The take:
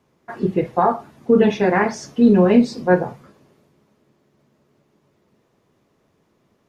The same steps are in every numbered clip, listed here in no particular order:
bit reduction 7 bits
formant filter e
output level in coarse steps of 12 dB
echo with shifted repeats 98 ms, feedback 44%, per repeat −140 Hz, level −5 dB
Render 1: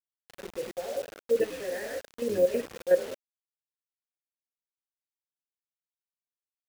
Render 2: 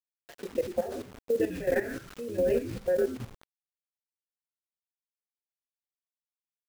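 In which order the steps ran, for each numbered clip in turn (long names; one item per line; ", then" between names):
echo with shifted repeats, then output level in coarse steps, then formant filter, then bit reduction
formant filter, then echo with shifted repeats, then bit reduction, then output level in coarse steps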